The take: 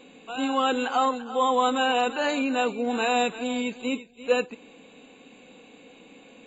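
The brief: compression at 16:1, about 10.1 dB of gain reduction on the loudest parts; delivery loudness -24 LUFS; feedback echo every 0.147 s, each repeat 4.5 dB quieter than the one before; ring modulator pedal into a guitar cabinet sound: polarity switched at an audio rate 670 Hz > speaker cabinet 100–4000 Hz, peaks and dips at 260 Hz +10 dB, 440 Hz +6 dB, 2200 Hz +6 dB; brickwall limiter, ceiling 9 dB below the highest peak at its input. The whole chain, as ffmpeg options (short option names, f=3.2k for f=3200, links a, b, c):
-af "acompressor=threshold=-27dB:ratio=16,alimiter=level_in=3.5dB:limit=-24dB:level=0:latency=1,volume=-3.5dB,aecho=1:1:147|294|441|588|735|882|1029|1176|1323:0.596|0.357|0.214|0.129|0.0772|0.0463|0.0278|0.0167|0.01,aeval=exprs='val(0)*sgn(sin(2*PI*670*n/s))':c=same,highpass=100,equalizer=f=260:t=q:w=4:g=10,equalizer=f=440:t=q:w=4:g=6,equalizer=f=2.2k:t=q:w=4:g=6,lowpass=f=4k:w=0.5412,lowpass=f=4k:w=1.3066,volume=8.5dB"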